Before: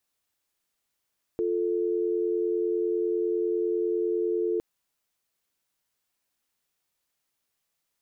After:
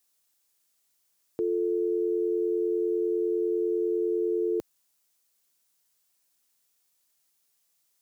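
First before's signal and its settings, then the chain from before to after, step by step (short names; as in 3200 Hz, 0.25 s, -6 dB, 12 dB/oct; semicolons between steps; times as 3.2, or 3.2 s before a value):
call progress tone dial tone, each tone -26.5 dBFS 3.21 s
HPF 82 Hz; tone controls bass -1 dB, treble +9 dB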